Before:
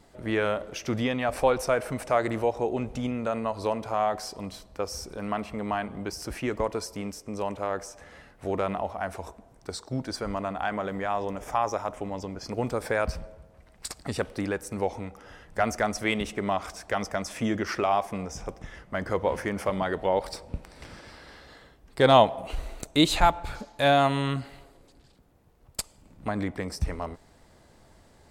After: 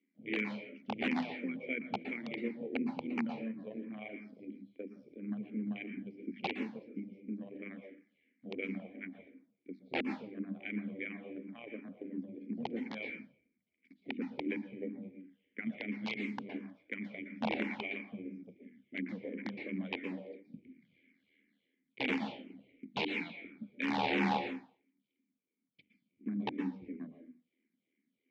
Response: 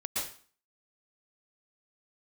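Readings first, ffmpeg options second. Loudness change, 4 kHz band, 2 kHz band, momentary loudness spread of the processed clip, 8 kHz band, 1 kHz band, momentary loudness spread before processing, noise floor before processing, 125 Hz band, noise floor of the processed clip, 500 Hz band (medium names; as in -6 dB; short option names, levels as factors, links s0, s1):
-11.0 dB, -12.5 dB, -7.0 dB, 14 LU, under -30 dB, -16.0 dB, 16 LU, -57 dBFS, -15.0 dB, -85 dBFS, -17.0 dB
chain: -filter_complex "[0:a]afwtdn=0.0178,bandreject=f=50:t=h:w=6,bandreject=f=100:t=h:w=6,bandreject=f=150:t=h:w=6,bandreject=f=200:t=h:w=6,bandreject=f=250:t=h:w=6,bandreject=f=300:t=h:w=6,alimiter=limit=0.178:level=0:latency=1:release=139,asplit=3[s0][s1][s2];[s0]bandpass=f=270:t=q:w=8,volume=1[s3];[s1]bandpass=f=2290:t=q:w=8,volume=0.501[s4];[s2]bandpass=f=3010:t=q:w=8,volume=0.355[s5];[s3][s4][s5]amix=inputs=3:normalize=0,tremolo=f=80:d=0.667,aeval=exprs='(mod(47.3*val(0)+1,2)-1)/47.3':c=same,highpass=190,equalizer=f=210:t=q:w=4:g=10,equalizer=f=480:t=q:w=4:g=4,equalizer=f=840:t=q:w=4:g=4,equalizer=f=1300:t=q:w=4:g=-8,equalizer=f=2300:t=q:w=4:g=9,lowpass=f=3800:w=0.5412,lowpass=f=3800:w=1.3066,asplit=2[s6][s7];[1:a]atrim=start_sample=2205[s8];[s7][s8]afir=irnorm=-1:irlink=0,volume=0.355[s9];[s6][s9]amix=inputs=2:normalize=0,asplit=2[s10][s11];[s11]afreqshift=-2.9[s12];[s10][s12]amix=inputs=2:normalize=1,volume=1.88"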